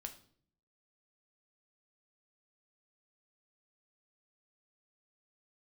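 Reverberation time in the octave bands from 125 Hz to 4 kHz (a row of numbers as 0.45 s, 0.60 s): 0.85 s, 0.80 s, 0.65 s, 0.50 s, 0.45 s, 0.45 s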